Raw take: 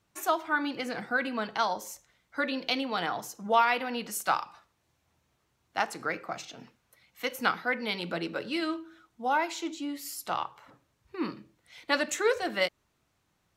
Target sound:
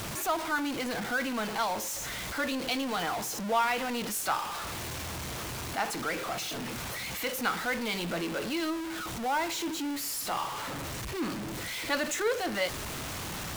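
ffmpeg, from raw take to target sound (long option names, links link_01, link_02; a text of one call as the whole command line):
ffmpeg -i in.wav -af "aeval=exprs='val(0)+0.5*0.0531*sgn(val(0))':channel_layout=same,volume=-5.5dB" out.wav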